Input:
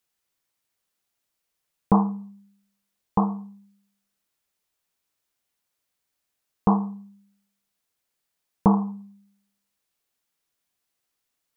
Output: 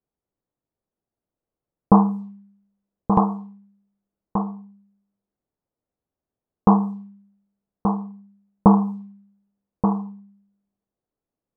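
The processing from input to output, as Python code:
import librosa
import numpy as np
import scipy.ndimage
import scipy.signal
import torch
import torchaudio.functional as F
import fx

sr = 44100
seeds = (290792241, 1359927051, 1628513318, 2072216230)

p1 = x + fx.echo_single(x, sr, ms=1179, db=-7.0, dry=0)
p2 = fx.env_lowpass(p1, sr, base_hz=540.0, full_db=-20.5)
y = p2 * librosa.db_to_amplitude(5.0)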